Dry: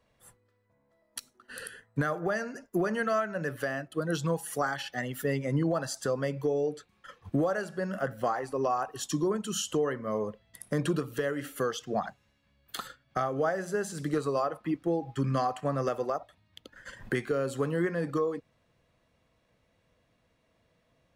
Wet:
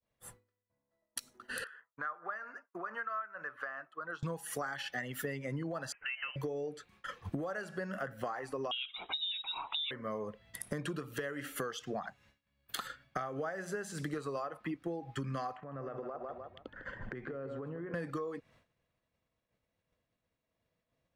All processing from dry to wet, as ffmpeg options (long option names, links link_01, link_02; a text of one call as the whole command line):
ffmpeg -i in.wav -filter_complex "[0:a]asettb=1/sr,asplit=3[link_01][link_02][link_03];[link_01]atrim=end=1.644[link_04];[link_02]atrim=start=1.64:end=4.23,asetpts=PTS-STARTPTS,afade=type=in:duration=0.004:curve=qsin,afade=type=out:start_time=2.586:duration=0.004:curve=qsin,tremolo=f=4.5:d=0.4,bandpass=frequency=1200:width_type=q:width=3.4[link_05];[link_03]atrim=start=4.226[link_06];[link_04][link_05]acrossfade=duration=0.004:curve1=hsin:curve2=qsin[link_07];[link_07][link_06]acrossfade=duration=0.004:curve1=qsin:curve2=hsin,asettb=1/sr,asplit=3[link_08][link_09][link_10];[link_08]atrim=end=5.924[link_11];[link_09]atrim=start=5.92:end=6.36,asetpts=PTS-STARTPTS,afade=type=in:duration=0.004:curve=qsin,afade=type=out:start_time=0.436:duration=0.004:curve=qsin,aeval=exprs='if(lt(val(0),0),0.708*val(0),val(0))':channel_layout=same,highpass=frequency=1300:poles=1,lowpass=frequency=2700:width_type=q:width=0.5098,lowpass=frequency=2700:width_type=q:width=0.6013,lowpass=frequency=2700:width_type=q:width=0.9,lowpass=frequency=2700:width_type=q:width=2.563,afreqshift=-3200[link_12];[link_10]atrim=start=6.356[link_13];[link_11][link_12]acrossfade=duration=0.004:curve1=hsin:curve2=qsin[link_14];[link_14][link_13]acrossfade=duration=0.004:curve1=qsin:curve2=hsin,asettb=1/sr,asplit=3[link_15][link_16][link_17];[link_15]atrim=end=8.714[link_18];[link_16]atrim=start=8.71:end=9.91,asetpts=PTS-STARTPTS,afade=type=in:duration=0.004:curve=qsin,afade=type=out:start_time=1.196:duration=0.004:curve=qsin,highpass=120,lowpass=frequency=3400:width_type=q:width=0.5098,lowpass=frequency=3400:width_type=q:width=0.6013,lowpass=frequency=3400:width_type=q:width=0.9,lowpass=frequency=3400:width_type=q:width=2.563,afreqshift=-4000[link_19];[link_17]atrim=start=9.906[link_20];[link_18][link_19]acrossfade=duration=0.004:curve1=hsin:curve2=qsin[link_21];[link_21][link_20]acrossfade=duration=0.004:curve1=qsin:curve2=hsin,asettb=1/sr,asplit=3[link_22][link_23][link_24];[link_22]atrim=end=15.564[link_25];[link_23]atrim=start=15.56:end=17.94,asetpts=PTS-STARTPTS,afade=type=in:duration=0.004:curve=qsin,afade=type=out:start_time=2.376:duration=0.004:curve=qsin,lowpass=1600,aecho=1:1:152|304|456:0.282|0.0817|0.0237,atrim=end_sample=104958,acompressor=threshold=-41dB:ratio=16:attack=3.2:release=140:knee=1:detection=peak[link_26];[link_24]atrim=start=17.936[link_27];[link_25][link_26]acrossfade=duration=0.004:curve1=hsin:curve2=qsin[link_28];[link_28][link_27]acrossfade=duration=0.004:curve1=qsin:curve2=hsin,agate=range=-33dB:threshold=-58dB:ratio=3:detection=peak,adynamicequalizer=threshold=0.00562:dfrequency=1900:dqfactor=0.88:tfrequency=1900:tqfactor=0.88:attack=5:release=100:ratio=0.375:range=3:mode=boostabove:tftype=bell,acompressor=threshold=-41dB:ratio=6,volume=4.5dB" out.wav